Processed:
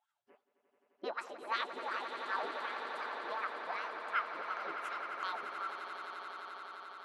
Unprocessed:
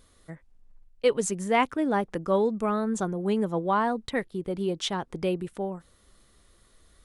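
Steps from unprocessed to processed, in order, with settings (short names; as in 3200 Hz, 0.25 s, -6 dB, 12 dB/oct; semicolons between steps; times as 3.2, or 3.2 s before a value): HPF 210 Hz 24 dB/oct; spectral gate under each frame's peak -20 dB weak; formant shift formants +5 st; wah 2.7 Hz 340–1400 Hz, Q 5.5; on a send: swelling echo 87 ms, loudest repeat 8, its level -12 dB; on the sum: gain +16.5 dB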